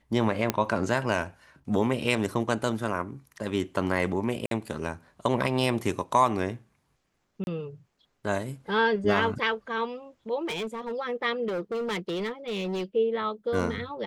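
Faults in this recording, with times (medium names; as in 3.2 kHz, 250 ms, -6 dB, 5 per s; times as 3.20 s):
0.50 s: pop -8 dBFS
4.46–4.51 s: dropout 52 ms
7.44–7.47 s: dropout 31 ms
10.45–10.93 s: clipped -28.5 dBFS
11.47–12.84 s: clipped -27 dBFS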